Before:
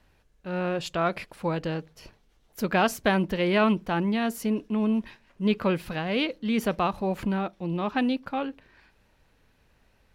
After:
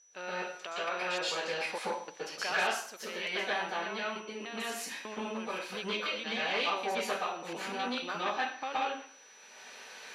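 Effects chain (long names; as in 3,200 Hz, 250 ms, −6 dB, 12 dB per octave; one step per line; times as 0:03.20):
slices reordered back to front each 297 ms, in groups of 2
camcorder AGC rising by 11 dB per second
high-pass filter 420 Hz 12 dB per octave
spectral tilt +3.5 dB per octave
downward compressor 2 to 1, threshold −40 dBFS, peak gain reduction 12.5 dB
sample-and-hold tremolo
steady tone 5,900 Hz −55 dBFS
high-frequency loss of the air 85 metres
dense smooth reverb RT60 0.53 s, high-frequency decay 0.85×, pre-delay 110 ms, DRR −8 dB
saturating transformer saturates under 1,600 Hz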